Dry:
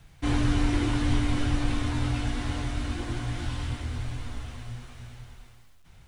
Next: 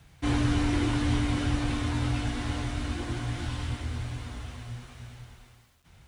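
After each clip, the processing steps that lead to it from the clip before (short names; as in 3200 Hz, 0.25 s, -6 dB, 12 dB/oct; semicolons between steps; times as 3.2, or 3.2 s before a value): HPF 45 Hz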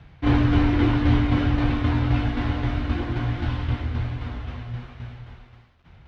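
tremolo saw down 3.8 Hz, depth 40%; air absorption 290 m; gain +9 dB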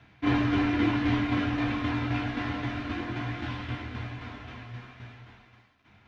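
reverb RT60 0.15 s, pre-delay 3 ms, DRR 5 dB; gain -3.5 dB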